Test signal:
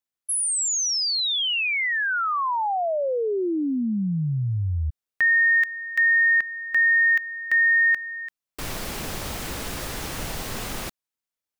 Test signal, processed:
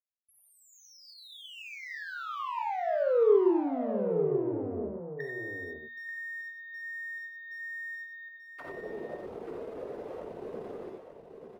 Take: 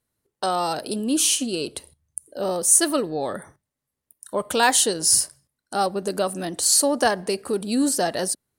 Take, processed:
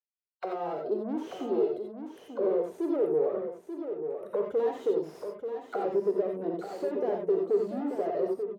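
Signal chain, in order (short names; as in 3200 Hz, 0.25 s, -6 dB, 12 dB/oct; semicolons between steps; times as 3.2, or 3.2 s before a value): per-bin expansion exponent 1.5; tube stage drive 35 dB, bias 0.55; notches 60/120/180/240 Hz; AGC gain up to 5.5 dB; high shelf 4700 Hz -6 dB; auto-wah 430–2400 Hz, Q 4.6, down, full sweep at -35 dBFS; in parallel at -2.5 dB: compressor, threshold -49 dBFS; on the sum: low shelf 94 Hz -7.5 dB; on a send: echo 0.886 s -8 dB; on the sum: non-linear reverb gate 0.11 s rising, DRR 1 dB; decimation joined by straight lines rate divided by 2×; gain +8.5 dB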